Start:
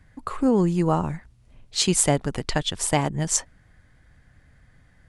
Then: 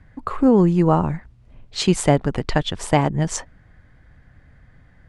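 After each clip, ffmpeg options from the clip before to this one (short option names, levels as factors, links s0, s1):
-af "aemphasis=mode=reproduction:type=75fm,volume=1.68"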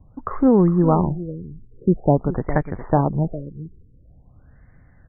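-filter_complex "[0:a]highshelf=f=2900:g=-11.5,asplit=2[s0][s1];[s1]adelay=408.2,volume=0.224,highshelf=f=4000:g=-9.18[s2];[s0][s2]amix=inputs=2:normalize=0,afftfilt=real='re*lt(b*sr/1024,460*pow(2400/460,0.5+0.5*sin(2*PI*0.47*pts/sr)))':imag='im*lt(b*sr/1024,460*pow(2400/460,0.5+0.5*sin(2*PI*0.47*pts/sr)))':win_size=1024:overlap=0.75"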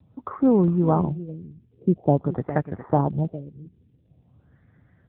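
-af "volume=0.75" -ar 8000 -c:a libopencore_amrnb -b:a 7950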